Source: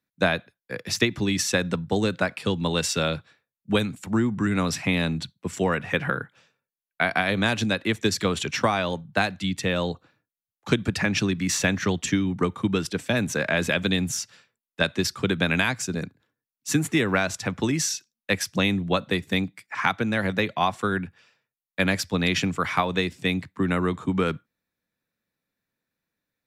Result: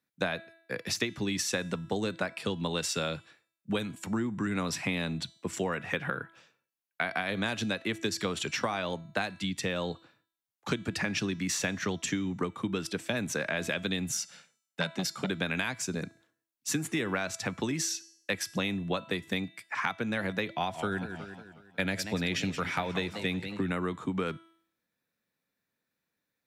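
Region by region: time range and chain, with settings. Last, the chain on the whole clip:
0:14.12–0:15.30: low shelf with overshoot 130 Hz −7 dB, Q 3 + comb filter 1.4 ms, depth 41% + saturating transformer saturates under 930 Hz
0:20.49–0:23.72: low-shelf EQ 76 Hz +10 dB + notch filter 1,100 Hz, Q 5.9 + feedback echo with a swinging delay time 182 ms, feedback 47%, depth 189 cents, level −13 dB
whole clip: low-shelf EQ 84 Hz −10.5 dB; hum removal 330.1 Hz, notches 35; downward compressor 2.5 to 1, threshold −31 dBFS

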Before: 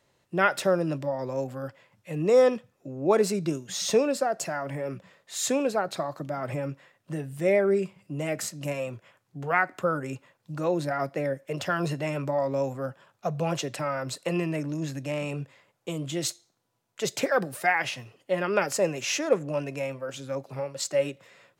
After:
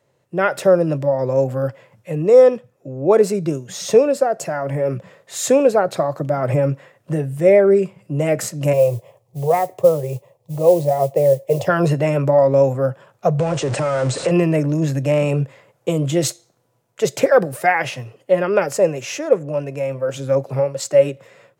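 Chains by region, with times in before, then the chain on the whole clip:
0:08.73–0:11.67: tilt shelving filter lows +4.5 dB, about 1,500 Hz + noise that follows the level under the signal 20 dB + phaser with its sweep stopped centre 610 Hz, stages 4
0:13.39–0:14.31: converter with a step at zero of −30.5 dBFS + Butterworth low-pass 9,300 Hz 96 dB per octave + downward compressor 3 to 1, threshold −30 dBFS
whole clip: octave-band graphic EQ 125/500/4,000 Hz +11/+8/−4 dB; automatic gain control gain up to 9 dB; low-shelf EQ 210 Hz −5 dB

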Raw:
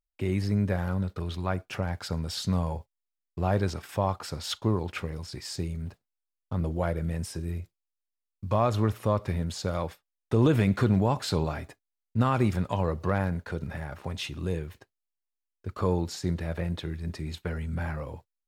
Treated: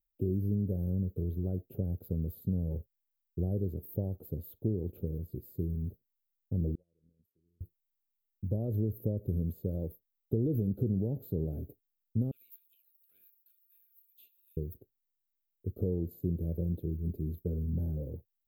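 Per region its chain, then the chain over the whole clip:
0:06.75–0:07.61: meter weighting curve D + downward compressor 10 to 1, threshold −32 dBFS + noise gate −33 dBFS, range −36 dB
0:12.31–0:14.57: Butterworth high-pass 1,900 Hz + dynamic equaliser 2,500 Hz, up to +6 dB, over −51 dBFS, Q 0.88 + highs frequency-modulated by the lows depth 0.16 ms
whole clip: drawn EQ curve 440 Hz 0 dB, 630 Hz −7 dB, 8,900 Hz +13 dB; downward compressor, threshold −26 dBFS; inverse Chebyshev band-stop filter 1,000–9,600 Hz, stop band 40 dB

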